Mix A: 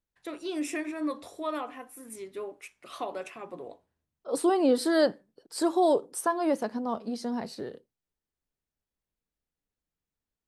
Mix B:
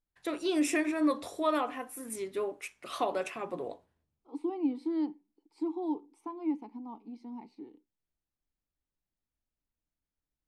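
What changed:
first voice +4.0 dB; second voice: add vowel filter u

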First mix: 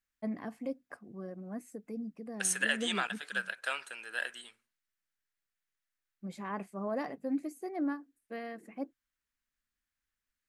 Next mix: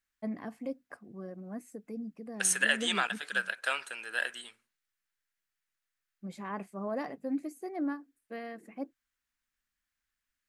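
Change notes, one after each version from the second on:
second voice +3.5 dB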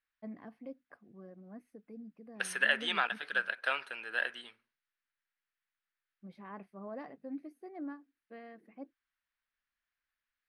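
first voice -8.5 dB; master: add running mean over 6 samples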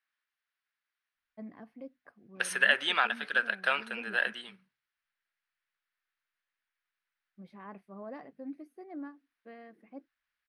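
first voice: entry +1.15 s; second voice +4.0 dB

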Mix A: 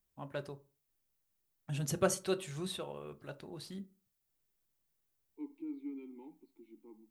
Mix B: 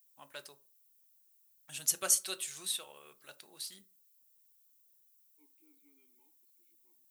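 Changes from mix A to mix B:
first voice +11.0 dB; master: add differentiator

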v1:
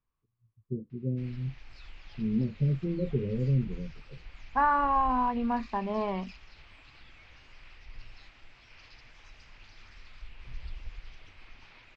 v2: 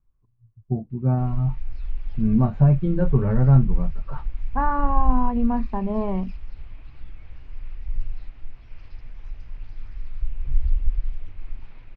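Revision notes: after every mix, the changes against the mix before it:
first voice: remove steep low-pass 520 Hz 96 dB/oct; master: add tilt -4 dB/oct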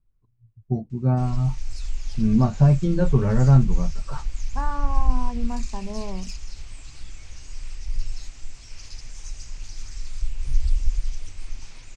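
second voice -9.0 dB; background: remove air absorption 130 m; master: remove air absorption 420 m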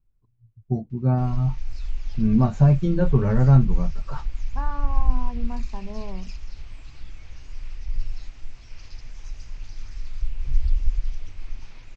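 second voice -3.5 dB; background: add air absorption 180 m

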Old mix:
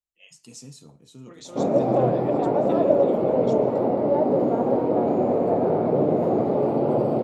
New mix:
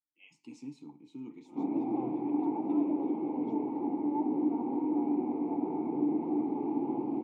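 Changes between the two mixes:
first voice +10.5 dB; second voice: send -7.5 dB; master: add vowel filter u

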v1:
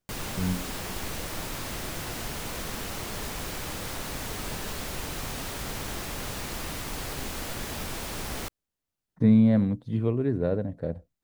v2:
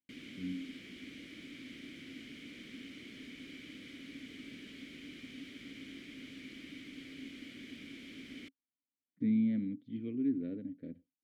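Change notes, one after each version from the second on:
master: add vowel filter i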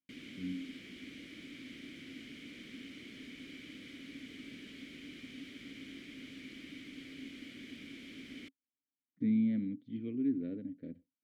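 none

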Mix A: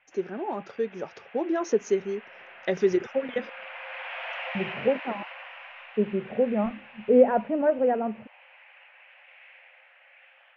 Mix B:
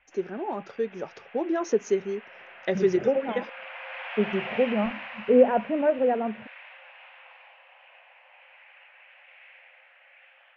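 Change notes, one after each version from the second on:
second voice: entry -1.80 s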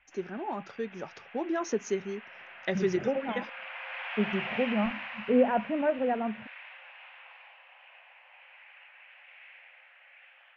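master: add bell 460 Hz -7.5 dB 1.1 oct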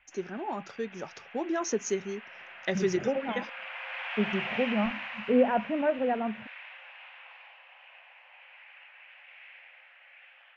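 master: remove air absorption 110 m

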